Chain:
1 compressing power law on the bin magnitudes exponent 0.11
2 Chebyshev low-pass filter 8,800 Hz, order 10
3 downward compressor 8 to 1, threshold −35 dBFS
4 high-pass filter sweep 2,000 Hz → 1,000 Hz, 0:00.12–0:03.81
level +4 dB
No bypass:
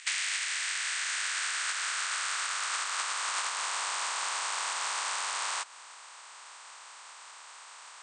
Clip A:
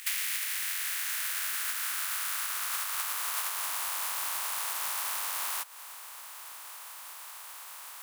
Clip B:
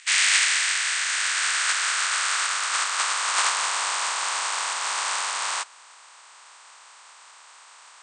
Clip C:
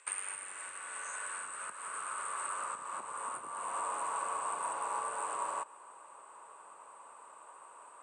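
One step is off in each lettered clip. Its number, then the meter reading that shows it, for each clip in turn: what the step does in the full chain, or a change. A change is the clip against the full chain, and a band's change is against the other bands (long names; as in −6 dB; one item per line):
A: 2, 8 kHz band +3.0 dB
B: 3, average gain reduction 5.5 dB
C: 1, 4 kHz band −19.0 dB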